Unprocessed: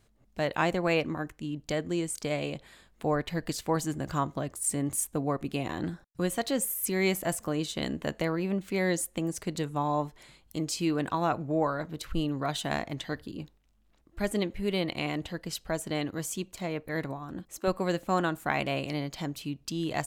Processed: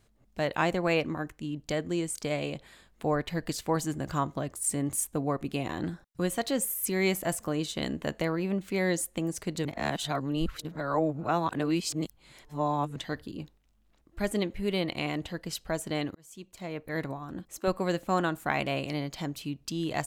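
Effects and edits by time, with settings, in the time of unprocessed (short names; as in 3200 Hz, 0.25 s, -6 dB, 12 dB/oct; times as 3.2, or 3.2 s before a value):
9.65–12.96 reverse
16.15–17 fade in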